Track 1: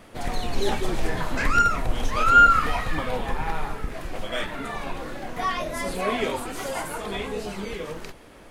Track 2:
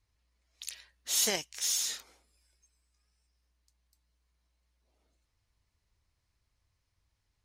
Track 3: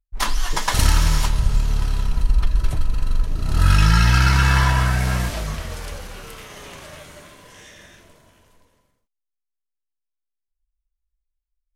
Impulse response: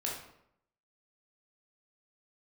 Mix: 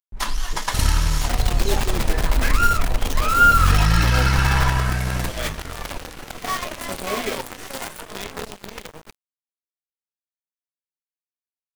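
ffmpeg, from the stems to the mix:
-filter_complex "[0:a]acrusher=bits=5:dc=4:mix=0:aa=0.000001,adelay=1050,volume=1.06[s0];[1:a]volume=0.355[s1];[2:a]acompressor=mode=upward:threshold=0.0501:ratio=2.5,volume=0.794[s2];[s0][s1][s2]amix=inputs=3:normalize=0,aeval=exprs='sgn(val(0))*max(abs(val(0))-0.0158,0)':c=same"

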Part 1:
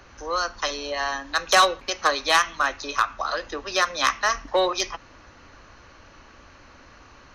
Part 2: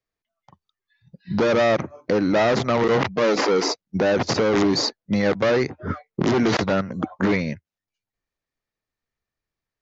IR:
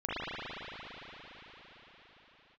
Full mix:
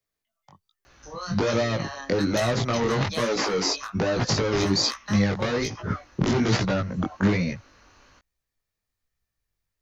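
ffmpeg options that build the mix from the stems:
-filter_complex "[0:a]acompressor=threshold=0.0447:ratio=6,adelay=850,volume=0.631[s0];[1:a]asubboost=boost=2.5:cutoff=150,acrossover=split=230[s1][s2];[s2]acompressor=threshold=0.0708:ratio=4[s3];[s1][s3]amix=inputs=2:normalize=0,volume=1.26[s4];[s0][s4]amix=inputs=2:normalize=0,highshelf=f=5300:g=9.5,flanger=delay=16.5:depth=5.6:speed=1.2"

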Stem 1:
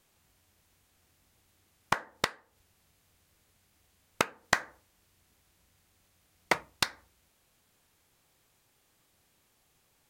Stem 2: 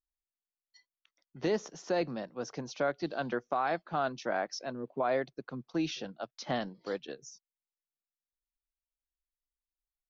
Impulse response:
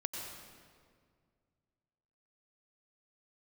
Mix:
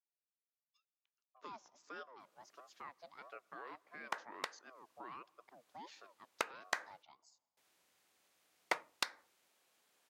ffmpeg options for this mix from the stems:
-filter_complex "[0:a]highshelf=f=9800:g=-6,adelay=2200,volume=0.668,asplit=3[s0][s1][s2];[s0]atrim=end=7.03,asetpts=PTS-STARTPTS,afade=t=out:st=7.026:d=0.004:c=hsin[s3];[s1]atrim=start=7.03:end=7.57,asetpts=PTS-STARTPTS,volume=0[s4];[s2]atrim=start=7.57,asetpts=PTS-STARTPTS,afade=t=in:d=0.004:c=hsin[s5];[s3][s4][s5]concat=n=3:v=0:a=1[s6];[1:a]aeval=exprs='val(0)*sin(2*PI*620*n/s+620*0.5/1.5*sin(2*PI*1.5*n/s))':c=same,volume=0.158,asplit=3[s7][s8][s9];[s8]volume=0.0668[s10];[s9]apad=whole_len=542318[s11];[s6][s11]sidechaincompress=threshold=0.002:ratio=10:attack=50:release=778[s12];[2:a]atrim=start_sample=2205[s13];[s10][s13]afir=irnorm=-1:irlink=0[s14];[s12][s7][s14]amix=inputs=3:normalize=0,highpass=370,alimiter=limit=0.168:level=0:latency=1:release=285"

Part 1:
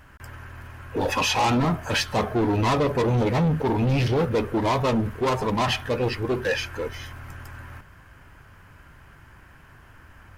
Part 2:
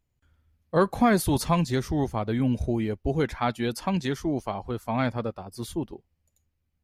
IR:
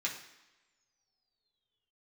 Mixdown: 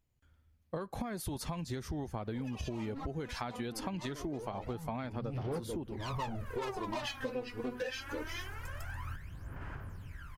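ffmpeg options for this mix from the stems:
-filter_complex "[0:a]aphaser=in_gain=1:out_gain=1:delay=4.1:decay=0.77:speed=0.24:type=sinusoidal,adelay=1350,volume=0.501[s0];[1:a]acompressor=threshold=0.0447:ratio=10,volume=0.75,asplit=2[s1][s2];[s2]apad=whole_len=516882[s3];[s0][s3]sidechaincompress=threshold=0.00178:ratio=6:attack=16:release=242[s4];[s4][s1]amix=inputs=2:normalize=0,acompressor=threshold=0.02:ratio=16"

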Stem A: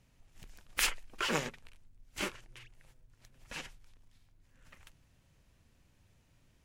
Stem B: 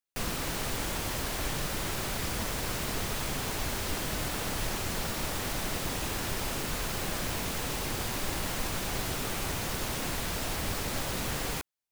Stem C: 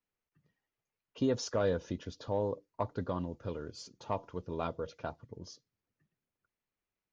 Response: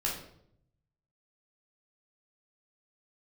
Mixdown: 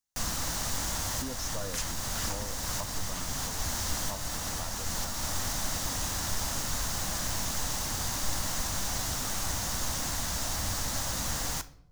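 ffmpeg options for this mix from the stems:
-filter_complex "[0:a]adelay=950,volume=0.422[s0];[1:a]volume=0.891,asplit=2[s1][s2];[s2]volume=0.188[s3];[2:a]volume=0.531,asplit=2[s4][s5];[s5]apad=whole_len=525382[s6];[s1][s6]sidechaincompress=threshold=0.0112:ratio=4:attack=5.2:release=390[s7];[3:a]atrim=start_sample=2205[s8];[s3][s8]afir=irnorm=-1:irlink=0[s9];[s0][s7][s4][s9]amix=inputs=4:normalize=0,equalizer=f=160:t=o:w=0.67:g=-4,equalizer=f=400:t=o:w=0.67:g=-11,equalizer=f=2500:t=o:w=0.67:g=-7,equalizer=f=6300:t=o:w=0.67:g=8"

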